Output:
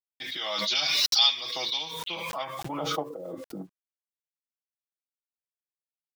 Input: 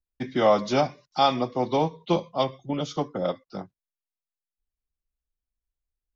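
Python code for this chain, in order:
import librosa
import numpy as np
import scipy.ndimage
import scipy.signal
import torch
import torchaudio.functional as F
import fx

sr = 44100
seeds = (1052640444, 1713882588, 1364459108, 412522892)

y = fx.high_shelf(x, sr, hz=2600.0, db=11.5, at=(0.75, 1.91))
y = y + 0.61 * np.pad(y, (int(6.2 * sr / 1000.0), 0))[:len(y)]
y = fx.dynamic_eq(y, sr, hz=530.0, q=1.1, threshold_db=-28.0, ratio=4.0, max_db=-4)
y = fx.over_compress(y, sr, threshold_db=-38.0, ratio=-1.0, at=(3.1, 3.6))
y = fx.filter_sweep_bandpass(y, sr, from_hz=3700.0, to_hz=270.0, start_s=1.93, end_s=3.55, q=2.6)
y = fx.quant_dither(y, sr, seeds[0], bits=12, dither='none')
y = fx.pre_swell(y, sr, db_per_s=22.0)
y = y * librosa.db_to_amplitude(3.5)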